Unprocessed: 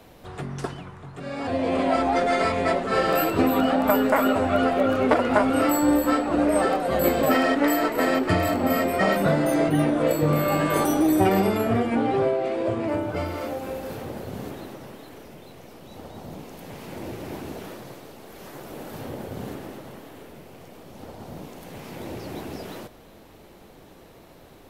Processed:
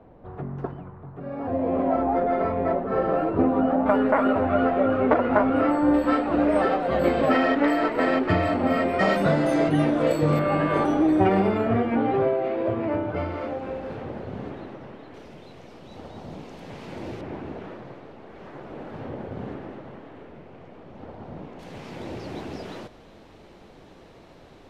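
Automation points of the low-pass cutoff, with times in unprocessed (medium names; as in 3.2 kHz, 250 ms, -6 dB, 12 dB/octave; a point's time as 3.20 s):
1 kHz
from 3.86 s 1.8 kHz
from 5.94 s 3.2 kHz
from 8.99 s 6.1 kHz
from 10.39 s 2.5 kHz
from 15.14 s 5.1 kHz
from 17.21 s 2.2 kHz
from 21.59 s 5.6 kHz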